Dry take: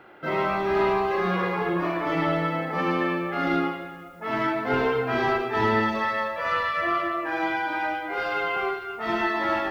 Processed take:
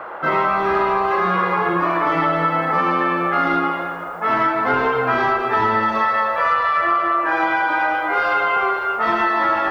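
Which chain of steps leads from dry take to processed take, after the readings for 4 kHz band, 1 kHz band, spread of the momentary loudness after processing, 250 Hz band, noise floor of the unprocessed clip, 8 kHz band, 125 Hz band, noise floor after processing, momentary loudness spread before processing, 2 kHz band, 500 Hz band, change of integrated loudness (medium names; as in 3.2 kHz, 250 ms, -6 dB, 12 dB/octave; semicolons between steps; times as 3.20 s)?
+2.5 dB, +9.5 dB, 2 LU, +2.0 dB, -41 dBFS, no reading, +2.0 dB, -28 dBFS, 5 LU, +7.0 dB, +3.5 dB, +7.0 dB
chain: peaking EQ 1.2 kHz +10 dB 1.1 oct; compression, threshold -21 dBFS, peak gain reduction 8.5 dB; band noise 450–1400 Hz -39 dBFS; trim +6 dB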